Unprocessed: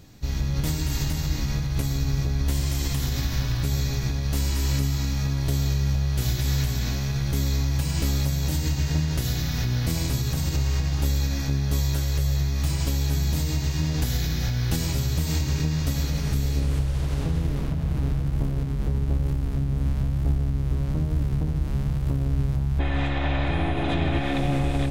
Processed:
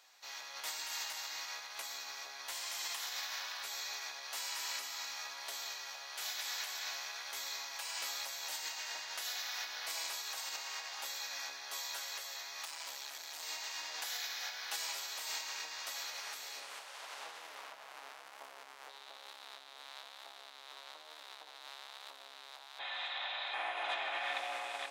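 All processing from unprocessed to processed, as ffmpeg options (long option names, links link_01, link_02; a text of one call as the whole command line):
ffmpeg -i in.wav -filter_complex "[0:a]asettb=1/sr,asplit=3[link_01][link_02][link_03];[link_01]atrim=end=12.654[link_04];[link_02]atrim=start=12.65:end=13.43,asetpts=PTS-STARTPTS,afade=type=in:duration=0.004:curve=qsin,afade=type=out:start_time=0.776:duration=0.004:curve=qsin,lowshelf=frequency=130:width_type=q:width=3:gain=-12,aeval=exprs='(tanh(25.1*val(0)+0.7)-tanh(0.7))/25.1':channel_layout=same[link_05];[link_03]atrim=start=13.426[link_06];[link_04][link_05]acrossfade=duration=0.004:curve1=hsin:curve2=qsin[link_07];[link_07][link_06]acrossfade=duration=0.004:curve1=qsin:curve2=hsin,asettb=1/sr,asplit=3[link_08][link_09][link_10];[link_08]atrim=end=18.894[link_11];[link_09]atrim=start=18.89:end=23.54,asetpts=PTS-STARTPTS,afade=type=in:duration=0.004:curve=qsin,afade=type=out:start_time=4.646:duration=0.004:curve=qsin,highpass=230,equalizer=frequency=3800:width_type=o:width=0.47:gain=13,acompressor=threshold=-32dB:ratio=2.5:attack=3.2:release=140:knee=1:detection=peak[link_12];[link_10]atrim=start=23.536[link_13];[link_11][link_12]acrossfade=duration=0.004:curve1=hsin:curve2=qsin[link_14];[link_14][link_13]acrossfade=duration=0.004:curve1=qsin:curve2=hsin,highpass=frequency=780:width=0.5412,highpass=frequency=780:width=1.3066,highshelf=frequency=9400:gain=-8,volume=-4dB" out.wav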